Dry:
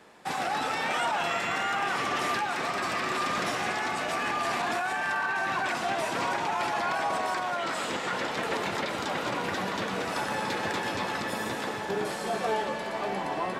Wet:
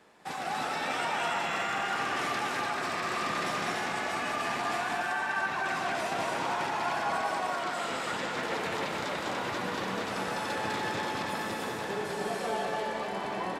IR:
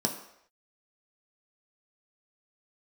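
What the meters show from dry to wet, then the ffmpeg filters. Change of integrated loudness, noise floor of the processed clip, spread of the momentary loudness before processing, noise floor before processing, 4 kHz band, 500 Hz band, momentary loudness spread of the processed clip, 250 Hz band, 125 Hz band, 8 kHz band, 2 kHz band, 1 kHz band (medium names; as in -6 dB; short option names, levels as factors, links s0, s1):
-2.0 dB, -35 dBFS, 3 LU, -34 dBFS, -2.0 dB, -2.5 dB, 3 LU, -2.5 dB, -2.0 dB, -2.0 dB, -2.0 dB, -2.0 dB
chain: -af "aecho=1:1:201.2|291.5:0.794|0.708,volume=0.531"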